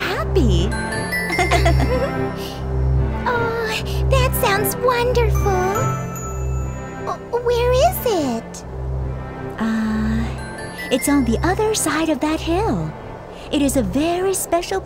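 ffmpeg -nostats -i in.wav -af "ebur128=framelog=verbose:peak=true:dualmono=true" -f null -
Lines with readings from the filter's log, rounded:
Integrated loudness:
  I:         -16.7 LUFS
  Threshold: -26.9 LUFS
Loudness range:
  LRA:         2.8 LU
  Threshold: -37.0 LUFS
  LRA low:   -18.5 LUFS
  LRA high:  -15.6 LUFS
True peak:
  Peak:       -2.9 dBFS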